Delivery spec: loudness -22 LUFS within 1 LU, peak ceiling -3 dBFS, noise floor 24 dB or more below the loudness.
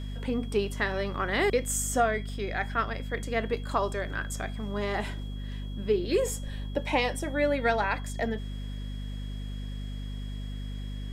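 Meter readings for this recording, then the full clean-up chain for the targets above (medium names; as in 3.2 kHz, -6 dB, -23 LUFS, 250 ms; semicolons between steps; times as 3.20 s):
hum 50 Hz; highest harmonic 250 Hz; hum level -33 dBFS; steady tone 3.3 kHz; tone level -51 dBFS; loudness -30.5 LUFS; peak level -12.5 dBFS; loudness target -22.0 LUFS
-> hum notches 50/100/150/200/250 Hz; band-stop 3.3 kHz, Q 30; trim +8.5 dB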